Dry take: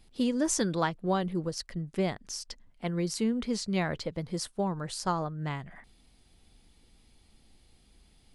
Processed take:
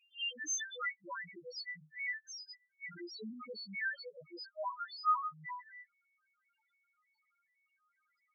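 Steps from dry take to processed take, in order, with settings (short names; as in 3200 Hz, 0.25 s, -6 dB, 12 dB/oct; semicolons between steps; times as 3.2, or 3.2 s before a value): frequency quantiser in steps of 2 st; band-pass sweep 2600 Hz -> 1300 Hz, 0.34–3.25; loudest bins only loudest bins 1; gain +11 dB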